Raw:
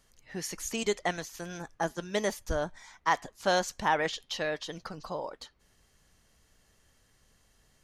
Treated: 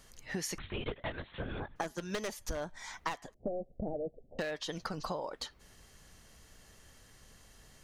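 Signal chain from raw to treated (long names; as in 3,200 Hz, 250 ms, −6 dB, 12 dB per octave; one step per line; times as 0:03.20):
wavefolder on the positive side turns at −25 dBFS
0:03.34–0:04.39: Butterworth low-pass 690 Hz 72 dB per octave
downward compressor 16 to 1, threshold −41 dBFS, peak gain reduction 20 dB
0:00.58–0:01.76: linear-prediction vocoder at 8 kHz whisper
level +7.5 dB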